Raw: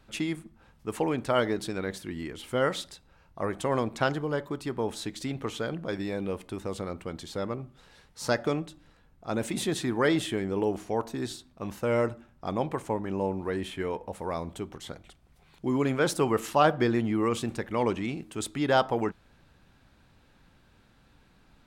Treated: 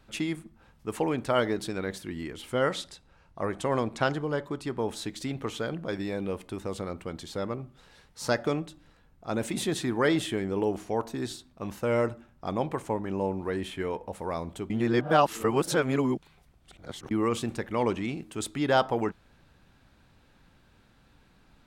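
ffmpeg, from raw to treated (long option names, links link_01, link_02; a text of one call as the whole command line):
ffmpeg -i in.wav -filter_complex "[0:a]asettb=1/sr,asplit=3[link_01][link_02][link_03];[link_01]atrim=end=2.514[link_04];[link_02]atrim=start=2.51:end=4.8,asetpts=PTS-STARTPTS,afade=type=in:duration=0.004:curve=qsin,afade=type=out:start_time=2.286:duration=0.004:curve=qsin,lowpass=11000[link_05];[link_03]atrim=start=4.796[link_06];[link_04][link_05]acrossfade=duration=0.004:curve1=hsin:curve2=qsin[link_07];[link_07][link_06]acrossfade=duration=0.004:curve1=qsin:curve2=hsin,asplit=3[link_08][link_09][link_10];[link_08]atrim=end=14.702[link_11];[link_09]atrim=start=14.698:end=17.112,asetpts=PTS-STARTPTS,areverse[link_12];[link_10]atrim=start=17.108[link_13];[link_11][link_12]acrossfade=duration=0.004:curve1=hsin:curve2=hsin[link_14];[link_14][link_13]acrossfade=duration=0.004:curve1=hsin:curve2=hsin" out.wav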